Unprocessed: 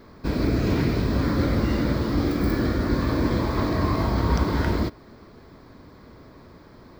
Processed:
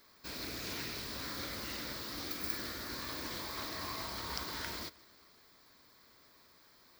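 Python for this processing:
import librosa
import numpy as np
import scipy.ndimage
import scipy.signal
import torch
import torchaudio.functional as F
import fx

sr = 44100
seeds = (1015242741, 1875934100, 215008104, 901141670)

p1 = scipy.signal.lfilter([1.0, -0.97], [1.0], x)
p2 = p1 + fx.echo_feedback(p1, sr, ms=155, feedback_pct=59, wet_db=-24, dry=0)
p3 = fx.doppler_dist(p2, sr, depth_ms=0.23)
y = F.gain(torch.from_numpy(p3), 2.0).numpy()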